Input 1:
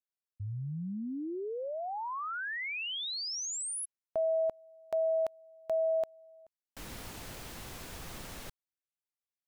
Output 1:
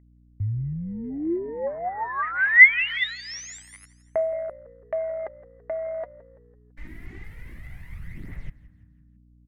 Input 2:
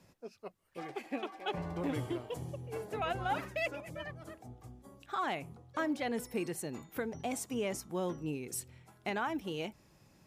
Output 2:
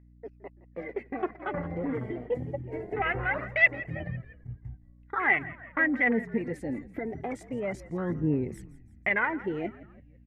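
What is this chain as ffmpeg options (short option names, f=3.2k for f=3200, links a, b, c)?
-filter_complex "[0:a]aemphasis=mode=production:type=75fm,afwtdn=0.0126,agate=range=-19dB:threshold=-56dB:ratio=16:release=63:detection=peak,tiltshelf=f=640:g=4,acontrast=79,alimiter=limit=-23.5dB:level=0:latency=1:release=56,aphaser=in_gain=1:out_gain=1:delay=4.6:decay=0.54:speed=0.24:type=triangular,aeval=exprs='val(0)+0.00224*(sin(2*PI*60*n/s)+sin(2*PI*2*60*n/s)/2+sin(2*PI*3*60*n/s)/3+sin(2*PI*4*60*n/s)/4+sin(2*PI*5*60*n/s)/5)':c=same,crystalizer=i=1:c=0,lowpass=f=2k:t=q:w=13,asplit=2[a][b];[b]asplit=4[c][d][e][f];[c]adelay=167,afreqshift=-56,volume=-18.5dB[g];[d]adelay=334,afreqshift=-112,volume=-24.2dB[h];[e]adelay=501,afreqshift=-168,volume=-29.9dB[i];[f]adelay=668,afreqshift=-224,volume=-35.5dB[j];[g][h][i][j]amix=inputs=4:normalize=0[k];[a][k]amix=inputs=2:normalize=0,volume=-1.5dB"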